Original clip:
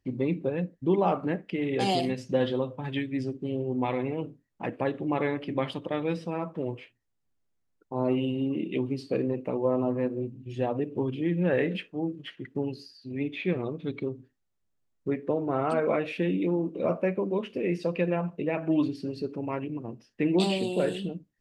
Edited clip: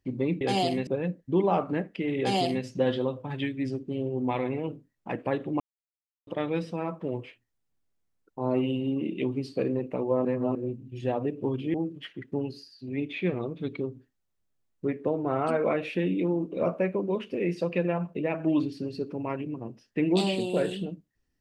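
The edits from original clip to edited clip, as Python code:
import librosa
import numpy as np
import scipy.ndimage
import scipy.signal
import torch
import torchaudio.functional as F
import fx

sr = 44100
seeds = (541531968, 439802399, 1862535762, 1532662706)

y = fx.edit(x, sr, fx.duplicate(start_s=1.73, length_s=0.46, to_s=0.41),
    fx.silence(start_s=5.14, length_s=0.67),
    fx.reverse_span(start_s=9.79, length_s=0.3),
    fx.cut(start_s=11.28, length_s=0.69), tone=tone)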